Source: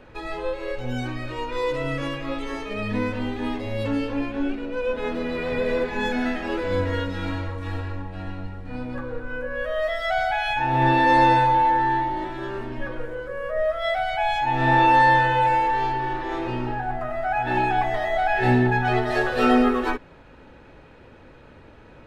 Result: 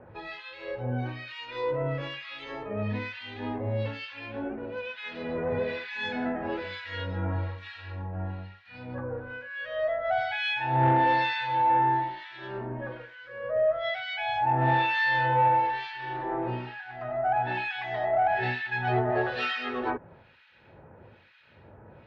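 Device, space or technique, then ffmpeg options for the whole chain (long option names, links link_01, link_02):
guitar amplifier with harmonic tremolo: -filter_complex "[0:a]acrossover=split=1500[link_01][link_02];[link_01]aeval=exprs='val(0)*(1-1/2+1/2*cos(2*PI*1.1*n/s))':channel_layout=same[link_03];[link_02]aeval=exprs='val(0)*(1-1/2-1/2*cos(2*PI*1.1*n/s))':channel_layout=same[link_04];[link_03][link_04]amix=inputs=2:normalize=0,asoftclip=type=tanh:threshold=-14.5dB,highpass=96,equalizer=frequency=100:width_type=q:width=4:gain=6,equalizer=frequency=280:width_type=q:width=4:gain=-10,equalizer=frequency=450:width_type=q:width=4:gain=-3,equalizer=frequency=1200:width_type=q:width=4:gain=-5,lowpass=frequency=4500:width=0.5412,lowpass=frequency=4500:width=1.3066,volume=1.5dB"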